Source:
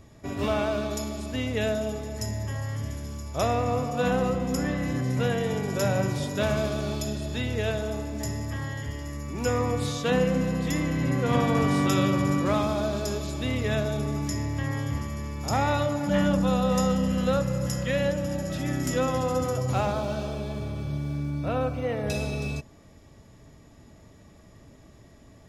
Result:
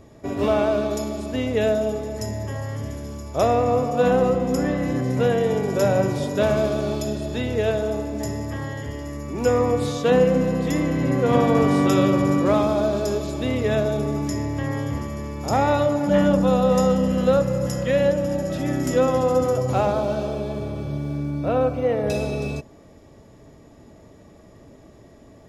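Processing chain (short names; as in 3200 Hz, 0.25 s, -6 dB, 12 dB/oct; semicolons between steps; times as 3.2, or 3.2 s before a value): bell 460 Hz +8.5 dB 2.2 oct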